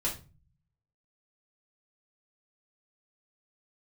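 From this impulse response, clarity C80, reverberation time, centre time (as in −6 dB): 16.0 dB, 0.30 s, 21 ms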